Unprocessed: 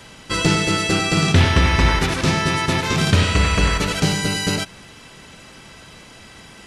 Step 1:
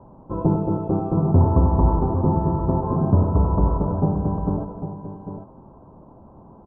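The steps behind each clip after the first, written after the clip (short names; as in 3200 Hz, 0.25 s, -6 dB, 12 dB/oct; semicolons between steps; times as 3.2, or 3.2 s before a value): elliptic low-pass 1000 Hz, stop band 50 dB; notch 460 Hz, Q 12; on a send: tapped delay 0.204/0.296/0.799 s -17.5/-19.5/-10 dB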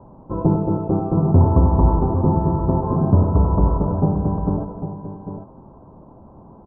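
air absorption 220 m; gain +2.5 dB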